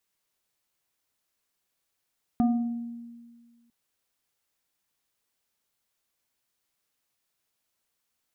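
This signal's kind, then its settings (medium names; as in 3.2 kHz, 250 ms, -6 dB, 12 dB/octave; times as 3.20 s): FM tone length 1.30 s, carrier 235 Hz, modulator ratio 2.08, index 0.73, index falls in 1.14 s exponential, decay 1.74 s, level -18 dB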